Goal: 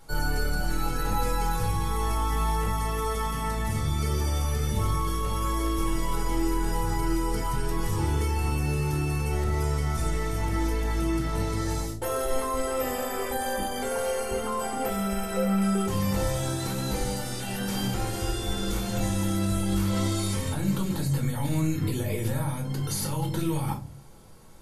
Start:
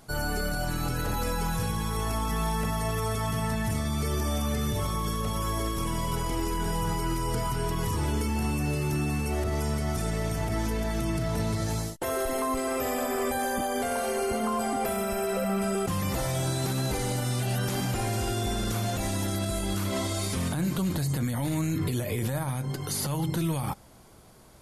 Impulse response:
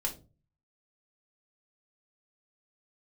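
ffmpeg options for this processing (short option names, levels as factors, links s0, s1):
-filter_complex "[1:a]atrim=start_sample=2205,asetrate=41454,aresample=44100[s0];[0:a][s0]afir=irnorm=-1:irlink=0,volume=0.668"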